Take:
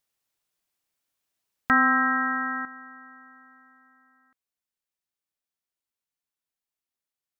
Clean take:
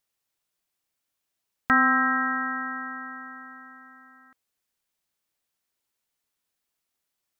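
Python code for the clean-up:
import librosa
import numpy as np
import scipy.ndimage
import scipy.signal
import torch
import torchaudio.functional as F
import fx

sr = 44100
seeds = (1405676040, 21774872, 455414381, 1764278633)

y = fx.fix_level(x, sr, at_s=2.65, step_db=10.0)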